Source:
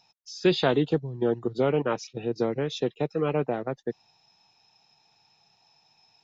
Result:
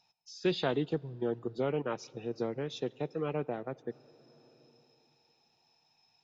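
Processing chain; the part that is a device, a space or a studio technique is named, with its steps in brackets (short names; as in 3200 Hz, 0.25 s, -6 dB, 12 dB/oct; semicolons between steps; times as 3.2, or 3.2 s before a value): compressed reverb return (on a send at -12 dB: reverb RT60 2.7 s, pre-delay 51 ms + compressor 5:1, threshold -37 dBFS, peak gain reduction 16.5 dB); on the sum: gain -8 dB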